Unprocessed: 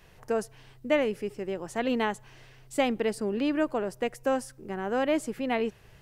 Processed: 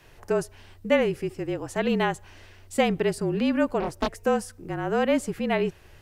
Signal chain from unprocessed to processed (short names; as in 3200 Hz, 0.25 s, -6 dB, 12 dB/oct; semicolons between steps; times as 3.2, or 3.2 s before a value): frequency shift -37 Hz; 3.8–4.2 Doppler distortion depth 0.89 ms; gain +3.5 dB